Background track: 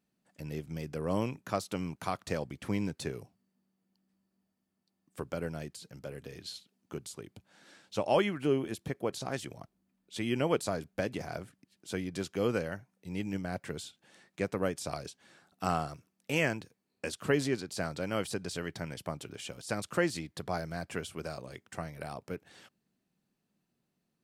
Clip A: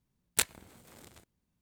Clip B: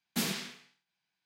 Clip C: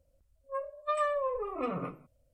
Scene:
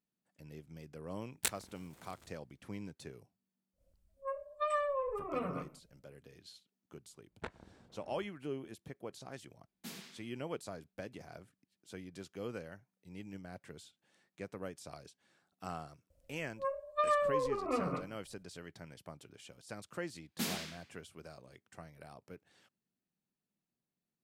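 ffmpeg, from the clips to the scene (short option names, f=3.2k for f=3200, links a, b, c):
-filter_complex "[1:a]asplit=2[a][b];[3:a]asplit=2[c][d];[2:a]asplit=2[e][f];[0:a]volume=-12dB[g];[b]lowpass=1.1k[h];[a]atrim=end=1.61,asetpts=PTS-STARTPTS,volume=-6.5dB,afade=t=in:d=0.004:c=hsin,afade=t=out:st=1.606:d=0.004:c=hsin,adelay=1060[i];[c]atrim=end=2.33,asetpts=PTS-STARTPTS,volume=-3.5dB,afade=t=in:d=0.1,afade=t=out:st=2.23:d=0.1,adelay=164493S[j];[h]atrim=end=1.61,asetpts=PTS-STARTPTS,volume=-3.5dB,afade=t=in:d=0.004:c=hsin,afade=t=out:st=1.606:d=0.004:c=hsin,adelay=7050[k];[e]atrim=end=1.25,asetpts=PTS-STARTPTS,volume=-15.5dB,afade=t=in:d=0.004:c=hsin,afade=t=out:st=1.246:d=0.004:c=hsin,adelay=9680[l];[d]atrim=end=2.33,asetpts=PTS-STARTPTS,volume=-0.5dB,afade=t=in:d=0.004:c=hsin,afade=t=out:st=2.326:d=0.004:c=hsin,adelay=16100[m];[f]atrim=end=1.25,asetpts=PTS-STARTPTS,volume=-5dB,afade=t=in:d=0.004:c=hsin,afade=t=out:st=1.246:d=0.004:c=hsin,adelay=20230[n];[g][i][j][k][l][m][n]amix=inputs=7:normalize=0"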